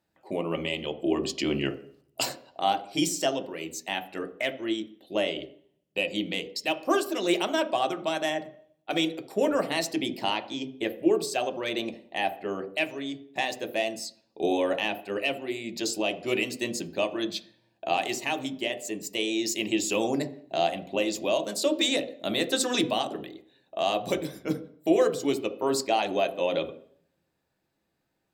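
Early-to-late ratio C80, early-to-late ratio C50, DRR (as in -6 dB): 17.5 dB, 13.5 dB, 6.5 dB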